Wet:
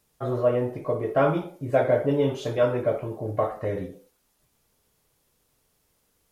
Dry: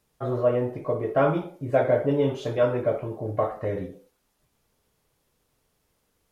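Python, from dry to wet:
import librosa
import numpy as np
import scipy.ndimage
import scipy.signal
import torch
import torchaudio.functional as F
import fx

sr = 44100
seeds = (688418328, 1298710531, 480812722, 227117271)

y = fx.high_shelf(x, sr, hz=4900.0, db=6.0)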